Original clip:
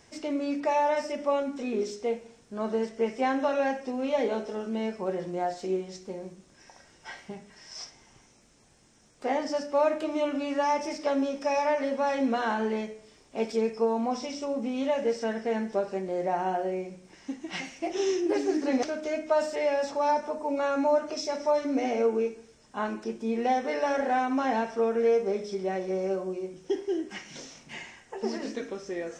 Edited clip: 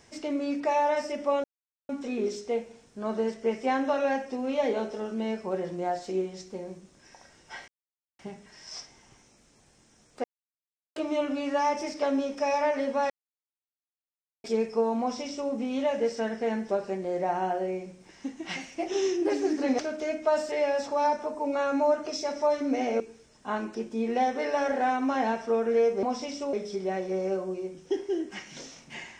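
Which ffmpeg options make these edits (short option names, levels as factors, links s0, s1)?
-filter_complex "[0:a]asplit=10[s0][s1][s2][s3][s4][s5][s6][s7][s8][s9];[s0]atrim=end=1.44,asetpts=PTS-STARTPTS,afade=t=out:st=1.436:d=0.004:c=hsin,apad=pad_dur=0.45[s10];[s1]atrim=start=1.44:end=7.23,asetpts=PTS-STARTPTS,afade=t=in:d=0.004:c=hsin,afade=t=out:st=5.786:d=0.004:c=hsin,apad=pad_dur=0.51[s11];[s2]atrim=start=7.23:end=9.28,asetpts=PTS-STARTPTS,afade=t=in:d=0.004:c=hsin,afade=t=out:st=2.046:d=0.004:c=hsin[s12];[s3]atrim=start=9.28:end=10,asetpts=PTS-STARTPTS,volume=0[s13];[s4]atrim=start=10:end=12.14,asetpts=PTS-STARTPTS,afade=t=in:d=0.004:c=hsin,afade=t=out:st=2.136:d=0.004:c=hsin[s14];[s5]atrim=start=12.14:end=13.48,asetpts=PTS-STARTPTS,volume=0[s15];[s6]atrim=start=13.48:end=22.042,asetpts=PTS-STARTPTS,afade=t=in:d=0.004:c=hsin[s16];[s7]atrim=start=22.288:end=25.322[s17];[s8]atrim=start=14.038:end=14.542[s18];[s9]atrim=start=25.318[s19];[s10][s11][s12][s13][s14][s15][s16]concat=n=7:v=0:a=1[s20];[s20][s17]acrossfade=d=0.004:c1=hsin:c2=hsin[s21];[s21][s18]acrossfade=d=0.004:c1=hsin:c2=hsin[s22];[s22][s19]acrossfade=d=0.004:c1=hsin:c2=hsin"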